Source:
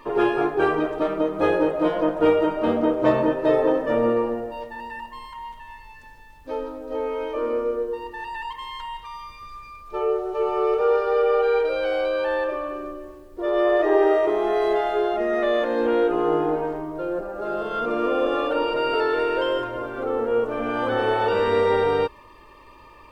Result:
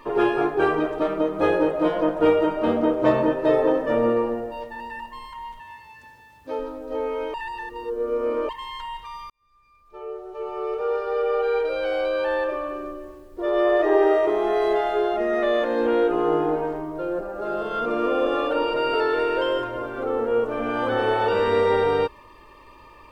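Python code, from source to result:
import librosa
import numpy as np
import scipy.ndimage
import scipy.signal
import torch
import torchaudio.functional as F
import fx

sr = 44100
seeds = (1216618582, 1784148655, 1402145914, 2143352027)

y = fx.highpass(x, sr, hz=71.0, slope=24, at=(5.6, 6.59))
y = fx.edit(y, sr, fx.reverse_span(start_s=7.34, length_s=1.15),
    fx.fade_in_span(start_s=9.3, length_s=2.93), tone=tone)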